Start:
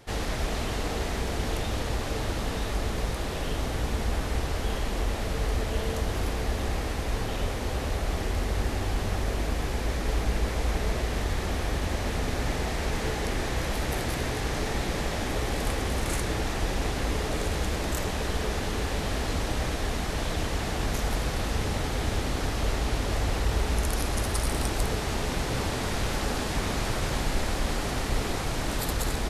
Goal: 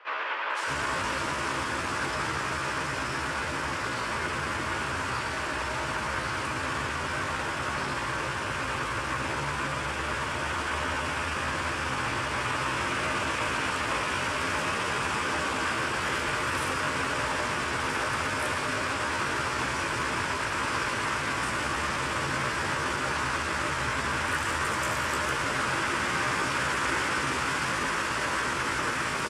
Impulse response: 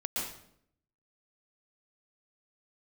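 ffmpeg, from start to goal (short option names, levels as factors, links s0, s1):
-filter_complex "[0:a]acrossover=split=470|2400[s0][s1][s2];[s0]asoftclip=type=hard:threshold=0.0422[s3];[s1]acontrast=28[s4];[s3][s4][s2]amix=inputs=3:normalize=0,asetrate=62367,aresample=44100,atempo=0.707107,highpass=160,equalizer=f=190:t=q:w=4:g=-7,equalizer=f=720:t=q:w=4:g=-10,equalizer=f=1500:t=q:w=4:g=5,equalizer=f=4000:t=q:w=4:g=-4,equalizer=f=6400:t=q:w=4:g=-4,lowpass=f=9200:w=0.5412,lowpass=f=9200:w=1.3066,asplit=2[s5][s6];[s6]adelay=15,volume=0.251[s7];[s5][s7]amix=inputs=2:normalize=0,acrossover=split=460|3400[s8][s9][s10];[s10]adelay=500[s11];[s8]adelay=620[s12];[s12][s9][s11]amix=inputs=3:normalize=0,asplit=2[s13][s14];[1:a]atrim=start_sample=2205[s15];[s14][s15]afir=irnorm=-1:irlink=0,volume=0.266[s16];[s13][s16]amix=inputs=2:normalize=0"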